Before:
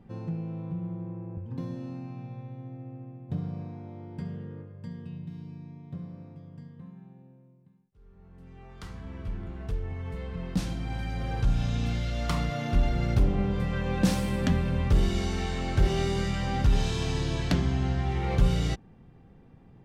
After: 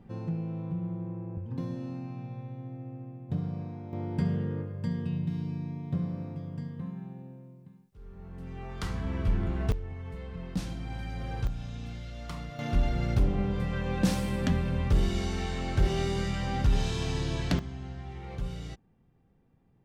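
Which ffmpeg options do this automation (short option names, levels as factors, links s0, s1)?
-af "asetnsamples=n=441:p=0,asendcmd='3.93 volume volume 8dB;9.72 volume volume -4dB;11.47 volume volume -10.5dB;12.59 volume volume -2dB;17.59 volume volume -12.5dB',volume=1.06"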